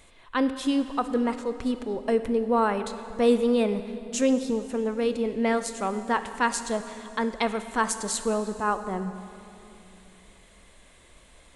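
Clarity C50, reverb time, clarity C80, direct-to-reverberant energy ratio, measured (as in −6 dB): 10.5 dB, 3.0 s, 11.5 dB, 10.0 dB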